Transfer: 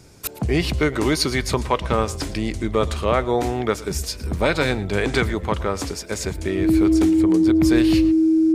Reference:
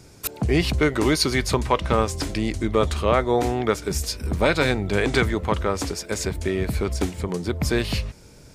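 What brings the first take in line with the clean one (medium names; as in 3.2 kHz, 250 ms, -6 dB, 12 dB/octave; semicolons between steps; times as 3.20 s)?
band-stop 320 Hz, Q 30; inverse comb 113 ms -19 dB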